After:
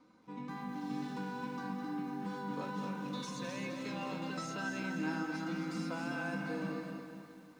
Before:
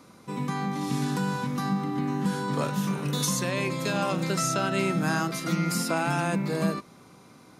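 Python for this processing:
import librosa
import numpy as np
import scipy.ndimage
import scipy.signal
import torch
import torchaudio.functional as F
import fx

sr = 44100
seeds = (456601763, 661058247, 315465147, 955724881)

p1 = fx.high_shelf(x, sr, hz=10000.0, db=-6.5)
p2 = fx.comb_fb(p1, sr, f0_hz=310.0, decay_s=0.23, harmonics='odd', damping=0.0, mix_pct=80)
p3 = p2 + fx.echo_feedback(p2, sr, ms=263, feedback_pct=45, wet_db=-6.5, dry=0)
p4 = fx.wow_flutter(p3, sr, seeds[0], rate_hz=2.1, depth_cents=18.0)
p5 = fx.air_absorb(p4, sr, metres=96.0)
p6 = p5 + 0.54 * np.pad(p5, (int(4.0 * sr / 1000.0), 0))[:len(p5)]
p7 = fx.echo_crushed(p6, sr, ms=208, feedback_pct=35, bits=10, wet_db=-7.5)
y = p7 * 10.0 ** (-2.0 / 20.0)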